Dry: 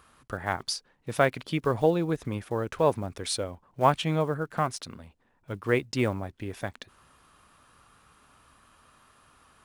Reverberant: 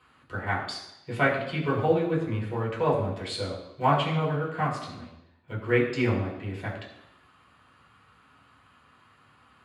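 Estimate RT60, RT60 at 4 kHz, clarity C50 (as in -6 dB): 0.85 s, 0.90 s, 6.0 dB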